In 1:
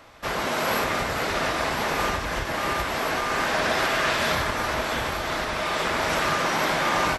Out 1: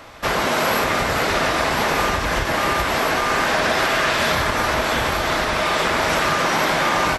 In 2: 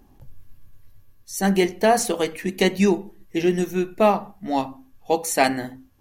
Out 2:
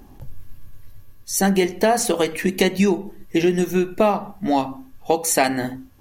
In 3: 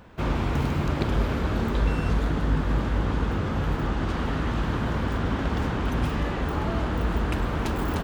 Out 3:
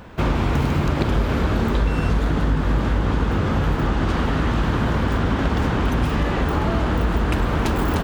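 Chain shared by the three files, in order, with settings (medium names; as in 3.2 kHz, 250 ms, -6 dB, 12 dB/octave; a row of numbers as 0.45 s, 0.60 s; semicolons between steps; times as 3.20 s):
compression 3:1, threshold -25 dBFS; trim +8.5 dB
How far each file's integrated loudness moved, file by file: +5.5 LU, +1.5 LU, +5.5 LU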